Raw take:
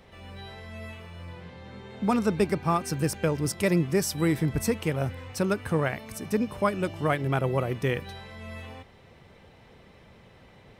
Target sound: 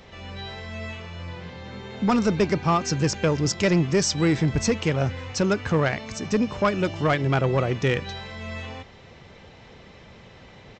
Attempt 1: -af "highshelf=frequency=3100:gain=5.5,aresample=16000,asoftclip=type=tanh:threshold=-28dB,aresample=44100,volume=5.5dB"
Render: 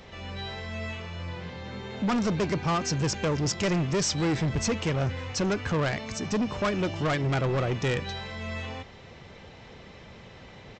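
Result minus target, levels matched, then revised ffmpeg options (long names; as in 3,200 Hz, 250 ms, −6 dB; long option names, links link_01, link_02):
soft clipping: distortion +9 dB
-af "highshelf=frequency=3100:gain=5.5,aresample=16000,asoftclip=type=tanh:threshold=-18.5dB,aresample=44100,volume=5.5dB"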